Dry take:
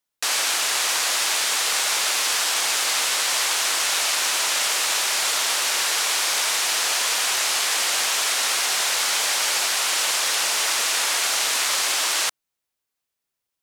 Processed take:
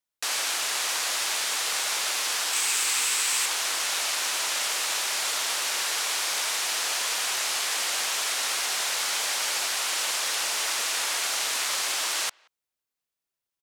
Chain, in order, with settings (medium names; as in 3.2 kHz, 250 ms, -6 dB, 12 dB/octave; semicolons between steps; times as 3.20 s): 2.53–3.46 s: graphic EQ with 31 bands 630 Hz -11 dB, 2.5 kHz +4 dB, 8 kHz +8 dB, 16 kHz +6 dB; speakerphone echo 180 ms, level -28 dB; trim -5.5 dB